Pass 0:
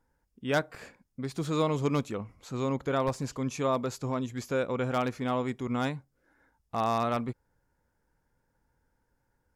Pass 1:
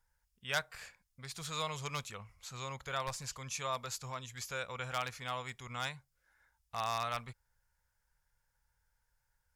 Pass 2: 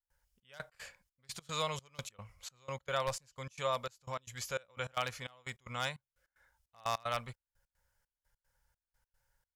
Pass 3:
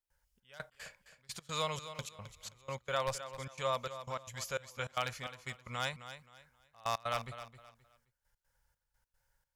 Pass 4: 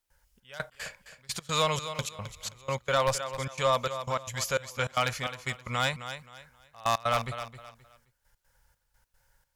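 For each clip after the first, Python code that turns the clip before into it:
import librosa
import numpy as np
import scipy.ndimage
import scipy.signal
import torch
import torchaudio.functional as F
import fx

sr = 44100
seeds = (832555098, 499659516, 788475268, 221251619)

y1 = fx.tone_stack(x, sr, knobs='10-0-10')
y1 = y1 * librosa.db_to_amplitude(3.0)
y2 = fx.small_body(y1, sr, hz=(550.0, 3000.0), ring_ms=35, db=8)
y2 = fx.step_gate(y2, sr, bpm=151, pattern='.xxx..x.xxx..x', floor_db=-24.0, edge_ms=4.5)
y2 = y2 * librosa.db_to_amplitude(1.5)
y3 = fx.echo_feedback(y2, sr, ms=263, feedback_pct=28, wet_db=-12)
y4 = fx.fold_sine(y3, sr, drive_db=4, ceiling_db=-18.5)
y4 = y4 * librosa.db_to_amplitude(2.0)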